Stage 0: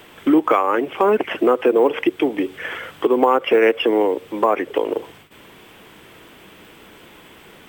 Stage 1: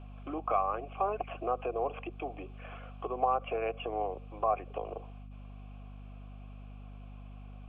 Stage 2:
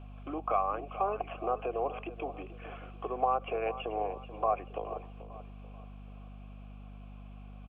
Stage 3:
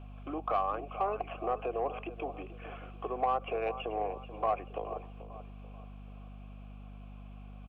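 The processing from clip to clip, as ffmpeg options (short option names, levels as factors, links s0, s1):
-filter_complex "[0:a]acrossover=split=3900[s0][s1];[s1]acompressor=threshold=0.00141:ratio=4:attack=1:release=60[s2];[s0][s2]amix=inputs=2:normalize=0,asplit=3[s3][s4][s5];[s3]bandpass=f=730:t=q:w=8,volume=1[s6];[s4]bandpass=f=1090:t=q:w=8,volume=0.501[s7];[s5]bandpass=f=2440:t=q:w=8,volume=0.355[s8];[s6][s7][s8]amix=inputs=3:normalize=0,aeval=exprs='val(0)+0.00891*(sin(2*PI*50*n/s)+sin(2*PI*2*50*n/s)/2+sin(2*PI*3*50*n/s)/3+sin(2*PI*4*50*n/s)/4+sin(2*PI*5*50*n/s)/5)':c=same,volume=0.596"
-af "aecho=1:1:435|870|1305|1740:0.2|0.0778|0.0303|0.0118"
-af "asoftclip=type=tanh:threshold=0.106"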